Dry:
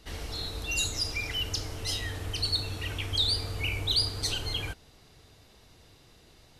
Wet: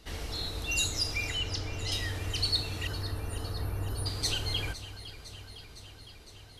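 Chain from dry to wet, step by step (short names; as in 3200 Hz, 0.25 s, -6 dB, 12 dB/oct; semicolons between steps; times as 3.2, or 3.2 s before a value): 1.3–1.92 air absorption 100 m; 2.87–4.06 Chebyshev band-stop 1800–9400 Hz, order 5; on a send: echo with dull and thin repeats by turns 0.254 s, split 2000 Hz, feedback 84%, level -13 dB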